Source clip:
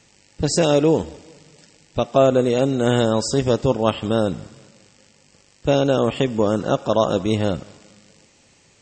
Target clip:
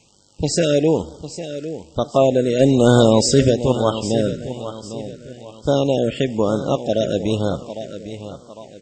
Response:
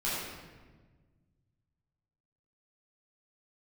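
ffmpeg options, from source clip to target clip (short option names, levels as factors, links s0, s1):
-filter_complex "[0:a]asplit=3[s0][s1][s2];[s0]afade=t=out:st=2.59:d=0.02[s3];[s1]acontrast=80,afade=t=in:st=2.59:d=0.02,afade=t=out:st=3.49:d=0.02[s4];[s2]afade=t=in:st=3.49:d=0.02[s5];[s3][s4][s5]amix=inputs=3:normalize=0,aecho=1:1:803|1606|2409|3212:0.251|0.0955|0.0363|0.0138,afftfilt=real='re*(1-between(b*sr/1024,920*pow(2200/920,0.5+0.5*sin(2*PI*1.1*pts/sr))/1.41,920*pow(2200/920,0.5+0.5*sin(2*PI*1.1*pts/sr))*1.41))':imag='im*(1-between(b*sr/1024,920*pow(2200/920,0.5+0.5*sin(2*PI*1.1*pts/sr))/1.41,920*pow(2200/920,0.5+0.5*sin(2*PI*1.1*pts/sr))*1.41))':win_size=1024:overlap=0.75"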